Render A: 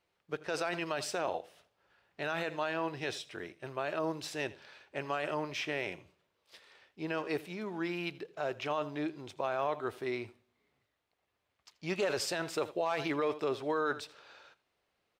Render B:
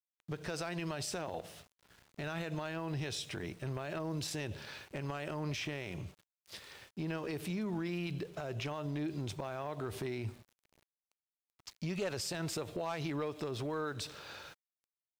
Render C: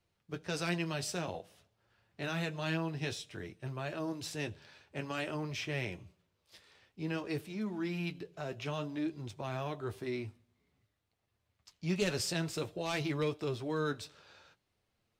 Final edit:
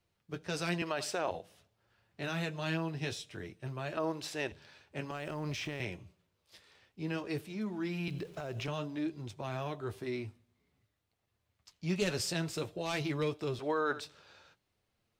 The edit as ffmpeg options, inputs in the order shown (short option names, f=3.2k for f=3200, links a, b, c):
-filter_complex "[0:a]asplit=3[a][b][c];[1:a]asplit=2[d][e];[2:a]asplit=6[f][g][h][i][j][k];[f]atrim=end=0.822[l];[a]atrim=start=0.818:end=1.312[m];[g]atrim=start=1.308:end=3.972[n];[b]atrim=start=3.968:end=4.522[o];[h]atrim=start=4.518:end=5.112[p];[d]atrim=start=5.108:end=5.802[q];[i]atrim=start=5.798:end=8.082[r];[e]atrim=start=8.078:end=8.682[s];[j]atrim=start=8.678:end=13.592[t];[c]atrim=start=13.588:end=14.052[u];[k]atrim=start=14.048[v];[l][m]acrossfade=d=0.004:c1=hsin:c2=hsin[w];[w][n]acrossfade=d=0.004:c1=hsin:c2=hsin[x];[x][o]acrossfade=d=0.004:c1=hsin:c2=hsin[y];[y][p]acrossfade=d=0.004:c1=hsin:c2=hsin[z];[z][q]acrossfade=d=0.004:c1=hsin:c2=hsin[aa];[aa][r]acrossfade=d=0.004:c1=hsin:c2=hsin[ab];[ab][s]acrossfade=d=0.004:c1=hsin:c2=hsin[ac];[ac][t]acrossfade=d=0.004:c1=hsin:c2=hsin[ad];[ad][u]acrossfade=d=0.004:c1=hsin:c2=hsin[ae];[ae][v]acrossfade=d=0.004:c1=hsin:c2=hsin"